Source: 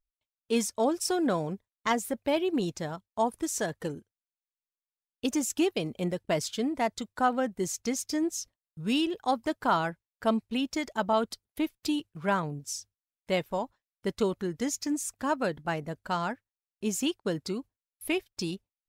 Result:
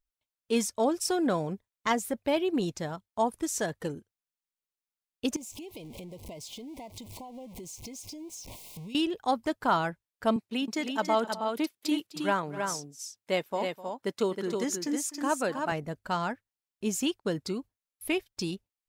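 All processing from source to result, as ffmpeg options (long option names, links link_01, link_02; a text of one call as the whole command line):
ffmpeg -i in.wav -filter_complex "[0:a]asettb=1/sr,asplit=3[link_01][link_02][link_03];[link_01]atrim=end=5.364[link_04];[link_02]atrim=start=5.36:end=8.95,asetpts=PTS-STARTPTS,afade=type=in:duration=0.004:curve=qsin,afade=type=out:start_time=3.586:duration=0.004:curve=qsin,aeval=exprs='val(0)+0.5*0.0158*sgn(val(0))':channel_layout=same,acompressor=threshold=-40dB:ratio=10:attack=3.2:release=140:knee=1:detection=peak,asuperstop=centerf=1500:order=12:qfactor=1.5[link_05];[link_03]atrim=start=8.946[link_06];[link_04][link_05]acrossfade=duration=0.004:curve1=hsin:curve2=qsin[link_07];[link_07][link_06]acrossfade=duration=0.004:curve1=qsin:curve2=hsin,asettb=1/sr,asplit=3[link_08][link_09][link_10];[link_08]atrim=end=10.364[link_11];[link_09]atrim=start=10.36:end=15.72,asetpts=PTS-STARTPTS,afade=type=in:duration=0.004:curve=qsin,afade=type=out:start_time=5.356:duration=0.004:curve=qsin,highpass=220,aecho=1:1:254|317:0.15|0.562,atrim=end_sample=236376[link_12];[link_10]atrim=start=15.716[link_13];[link_11][link_12]acrossfade=duration=0.004:curve1=hsin:curve2=qsin[link_14];[link_14][link_13]acrossfade=duration=0.004:curve1=qsin:curve2=hsin" out.wav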